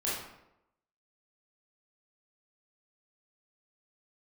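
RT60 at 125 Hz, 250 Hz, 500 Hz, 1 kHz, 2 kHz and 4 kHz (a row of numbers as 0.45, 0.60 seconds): 0.80, 0.85, 0.90, 0.85, 0.70, 0.55 seconds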